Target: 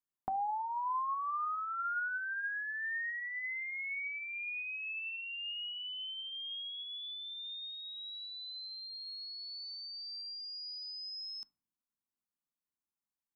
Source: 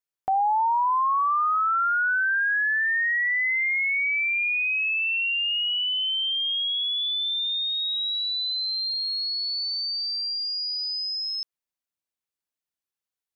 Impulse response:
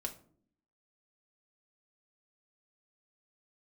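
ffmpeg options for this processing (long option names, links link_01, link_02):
-filter_complex "[0:a]equalizer=frequency=250:width_type=o:width=1:gain=9,equalizer=frequency=500:width_type=o:width=1:gain=-12,equalizer=frequency=1000:width_type=o:width=1:gain=5,equalizer=frequency=2000:width_type=o:width=1:gain=-5,equalizer=frequency=4000:width_type=o:width=1:gain=-9,acompressor=threshold=-31dB:ratio=6,asplit=2[link_01][link_02];[1:a]atrim=start_sample=2205,lowpass=2100[link_03];[link_02][link_03]afir=irnorm=-1:irlink=0,volume=-4dB[link_04];[link_01][link_04]amix=inputs=2:normalize=0,volume=-7dB"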